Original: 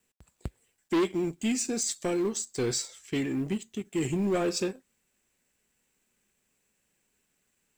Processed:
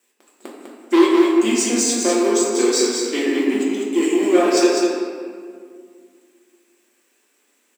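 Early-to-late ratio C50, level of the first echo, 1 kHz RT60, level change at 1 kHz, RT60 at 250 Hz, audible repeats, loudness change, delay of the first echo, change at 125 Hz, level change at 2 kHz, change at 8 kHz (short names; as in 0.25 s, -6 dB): -1.5 dB, -4.5 dB, 1.9 s, +14.5 dB, 2.7 s, 1, +12.5 dB, 0.2 s, n/a, +13.0 dB, +11.0 dB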